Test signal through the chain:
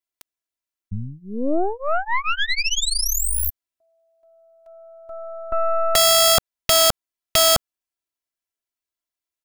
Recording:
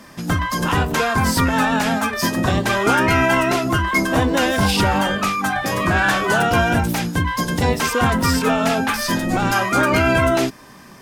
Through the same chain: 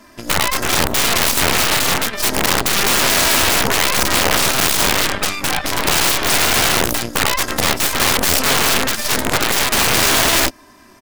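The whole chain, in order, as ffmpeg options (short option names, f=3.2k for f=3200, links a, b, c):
-af "aecho=1:1:3:0.93,aeval=exprs='0.841*(cos(1*acos(clip(val(0)/0.841,-1,1)))-cos(1*PI/2))+0.0944*(cos(3*acos(clip(val(0)/0.841,-1,1)))-cos(3*PI/2))+0.188*(cos(4*acos(clip(val(0)/0.841,-1,1)))-cos(4*PI/2))+0.0133*(cos(7*acos(clip(val(0)/0.841,-1,1)))-cos(7*PI/2))+0.106*(cos(8*acos(clip(val(0)/0.841,-1,1)))-cos(8*PI/2))':c=same,aeval=exprs='(mod(2.11*val(0)+1,2)-1)/2.11':c=same"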